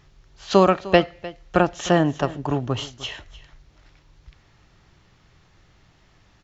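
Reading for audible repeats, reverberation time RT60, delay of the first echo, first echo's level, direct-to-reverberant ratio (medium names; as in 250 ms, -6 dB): 1, no reverb, 303 ms, -18.0 dB, no reverb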